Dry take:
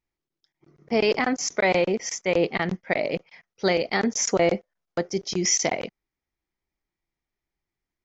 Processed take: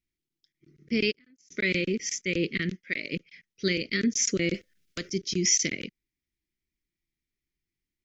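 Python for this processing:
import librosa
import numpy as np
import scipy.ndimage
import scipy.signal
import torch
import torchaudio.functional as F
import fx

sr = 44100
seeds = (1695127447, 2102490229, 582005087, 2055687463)

y = scipy.signal.sosfilt(scipy.signal.cheby1(2, 1.0, [310.0, 2200.0], 'bandstop', fs=sr, output='sos'), x)
y = fx.gate_flip(y, sr, shuts_db=-21.0, range_db=-34, at=(1.1, 1.5), fade=0.02)
y = fx.low_shelf(y, sr, hz=350.0, db=-12.0, at=(2.71, 3.12))
y = fx.spectral_comp(y, sr, ratio=2.0, at=(4.54, 5.1))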